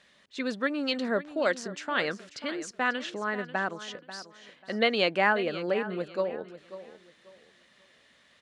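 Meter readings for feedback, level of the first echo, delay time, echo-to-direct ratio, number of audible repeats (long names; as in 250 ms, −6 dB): 26%, −14.0 dB, 540 ms, −13.5 dB, 2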